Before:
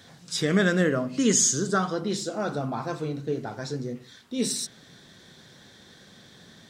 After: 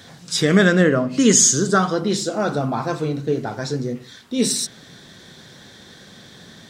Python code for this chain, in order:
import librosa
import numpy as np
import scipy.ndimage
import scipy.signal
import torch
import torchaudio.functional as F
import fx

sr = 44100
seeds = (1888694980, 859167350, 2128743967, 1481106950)

y = fx.high_shelf(x, sr, hz=fx.line((0.66, 8700.0), (1.1, 4600.0)), db=-8.0, at=(0.66, 1.1), fade=0.02)
y = F.gain(torch.from_numpy(y), 7.5).numpy()